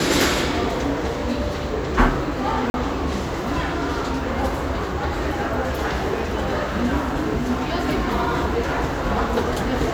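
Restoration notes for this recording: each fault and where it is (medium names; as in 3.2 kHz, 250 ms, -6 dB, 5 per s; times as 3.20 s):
2.70–2.74 s: dropout 41 ms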